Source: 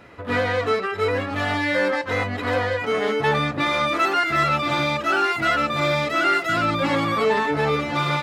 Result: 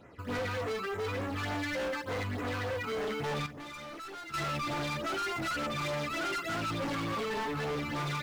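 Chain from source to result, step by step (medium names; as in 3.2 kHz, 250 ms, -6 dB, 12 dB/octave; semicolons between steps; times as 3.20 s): in parallel at -11.5 dB: bit crusher 6-bit; on the sum: phase shifter stages 12, 3.4 Hz, lowest notch 570–4400 Hz; overload inside the chain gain 25 dB; 3.46–4.34 s: feedback comb 430 Hz, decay 0.57 s, mix 70%; trim -7 dB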